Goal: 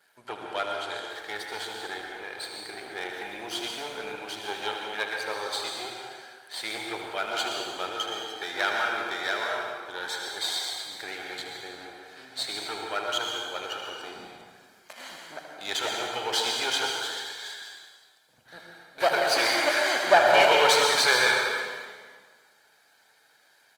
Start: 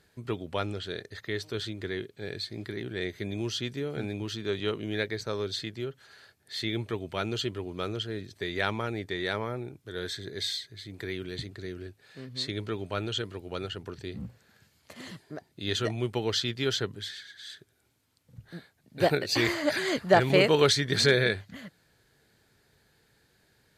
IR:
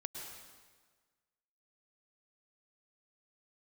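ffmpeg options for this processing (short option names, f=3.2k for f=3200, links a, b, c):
-filter_complex "[0:a]aeval=exprs='if(lt(val(0),0),0.251*val(0),val(0))':c=same,highpass=530,equalizer=f=1.1k:t=o:w=1.2:g=3.5,aecho=1:1:1.3:0.37,aecho=1:1:39|77:0.158|0.355[a];[1:a]atrim=start_sample=2205,asetrate=41454,aresample=44100[b];[a][b]afir=irnorm=-1:irlink=0,volume=8.5dB" -ar 48000 -c:a libopus -b:a 32k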